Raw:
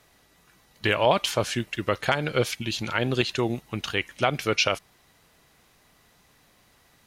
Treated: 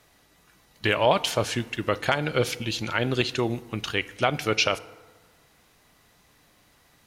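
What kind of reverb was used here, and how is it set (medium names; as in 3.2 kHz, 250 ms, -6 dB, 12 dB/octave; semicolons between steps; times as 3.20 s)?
FDN reverb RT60 1.4 s, low-frequency decay 1×, high-frequency decay 0.5×, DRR 15.5 dB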